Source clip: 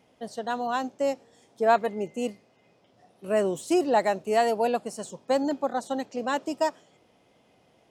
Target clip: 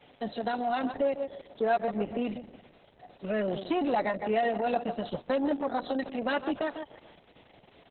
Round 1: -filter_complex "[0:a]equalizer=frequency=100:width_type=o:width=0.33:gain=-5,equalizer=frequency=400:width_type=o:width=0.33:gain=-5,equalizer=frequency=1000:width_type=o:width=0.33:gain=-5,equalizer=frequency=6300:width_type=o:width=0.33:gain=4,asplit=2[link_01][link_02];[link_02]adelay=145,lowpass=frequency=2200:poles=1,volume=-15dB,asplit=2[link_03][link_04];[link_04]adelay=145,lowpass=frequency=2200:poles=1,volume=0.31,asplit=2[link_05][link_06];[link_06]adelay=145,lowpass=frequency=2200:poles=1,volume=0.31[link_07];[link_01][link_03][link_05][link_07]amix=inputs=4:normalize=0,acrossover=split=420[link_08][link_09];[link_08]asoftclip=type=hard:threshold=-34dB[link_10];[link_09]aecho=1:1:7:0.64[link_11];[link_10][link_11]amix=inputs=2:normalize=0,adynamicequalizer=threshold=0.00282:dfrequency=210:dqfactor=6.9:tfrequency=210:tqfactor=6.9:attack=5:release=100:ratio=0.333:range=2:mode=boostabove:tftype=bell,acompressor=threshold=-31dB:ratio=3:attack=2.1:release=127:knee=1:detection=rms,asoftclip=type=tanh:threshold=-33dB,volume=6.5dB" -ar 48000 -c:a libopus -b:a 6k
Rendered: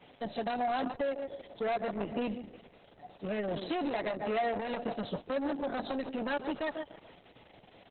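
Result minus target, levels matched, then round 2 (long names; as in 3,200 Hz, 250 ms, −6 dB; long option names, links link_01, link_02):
soft clipping: distortion +13 dB; hard clipping: distortion +9 dB
-filter_complex "[0:a]equalizer=frequency=100:width_type=o:width=0.33:gain=-5,equalizer=frequency=400:width_type=o:width=0.33:gain=-5,equalizer=frequency=1000:width_type=o:width=0.33:gain=-5,equalizer=frequency=6300:width_type=o:width=0.33:gain=4,asplit=2[link_01][link_02];[link_02]adelay=145,lowpass=frequency=2200:poles=1,volume=-15dB,asplit=2[link_03][link_04];[link_04]adelay=145,lowpass=frequency=2200:poles=1,volume=0.31,asplit=2[link_05][link_06];[link_06]adelay=145,lowpass=frequency=2200:poles=1,volume=0.31[link_07];[link_01][link_03][link_05][link_07]amix=inputs=4:normalize=0,acrossover=split=420[link_08][link_09];[link_08]asoftclip=type=hard:threshold=-27.5dB[link_10];[link_09]aecho=1:1:7:0.64[link_11];[link_10][link_11]amix=inputs=2:normalize=0,adynamicequalizer=threshold=0.00282:dfrequency=210:dqfactor=6.9:tfrequency=210:tqfactor=6.9:attack=5:release=100:ratio=0.333:range=2:mode=boostabove:tftype=bell,acompressor=threshold=-31dB:ratio=3:attack=2.1:release=127:knee=1:detection=rms,asoftclip=type=tanh:threshold=-23dB,volume=6.5dB" -ar 48000 -c:a libopus -b:a 6k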